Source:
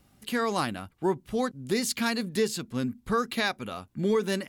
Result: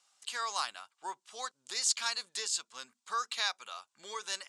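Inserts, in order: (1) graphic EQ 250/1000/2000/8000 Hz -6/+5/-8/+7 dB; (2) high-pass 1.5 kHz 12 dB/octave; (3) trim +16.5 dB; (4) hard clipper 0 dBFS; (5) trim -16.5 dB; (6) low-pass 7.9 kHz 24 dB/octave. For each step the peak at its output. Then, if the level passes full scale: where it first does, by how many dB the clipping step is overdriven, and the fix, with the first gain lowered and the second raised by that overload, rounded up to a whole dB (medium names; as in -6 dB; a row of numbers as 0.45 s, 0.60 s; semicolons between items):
-13.0 dBFS, -13.0 dBFS, +3.5 dBFS, 0.0 dBFS, -16.5 dBFS, -16.0 dBFS; step 3, 3.5 dB; step 3 +12.5 dB, step 5 -12.5 dB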